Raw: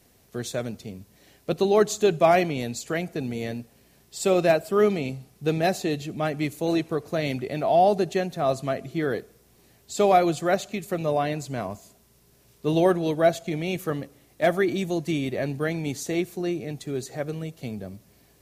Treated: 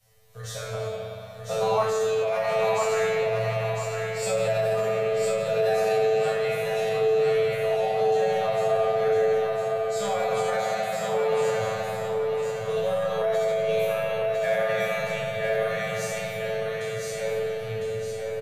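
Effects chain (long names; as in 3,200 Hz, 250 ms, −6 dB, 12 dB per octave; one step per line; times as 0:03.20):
peak hold with a decay on every bin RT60 0.96 s
Chebyshev band-stop filter 200–440 Hz, order 5
low-shelf EQ 60 Hz +9.5 dB
tuned comb filter 110 Hz, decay 0.38 s, harmonics all, mix 100%
spring reverb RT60 3.5 s, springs 43/59 ms, chirp 55 ms, DRR −2 dB
brickwall limiter −23.5 dBFS, peak gain reduction 9 dB
0:00.73–0:01.83: flat-topped bell 890 Hz +8.5 dB 1.2 octaves
repeating echo 1,004 ms, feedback 33%, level −4 dB
level +5 dB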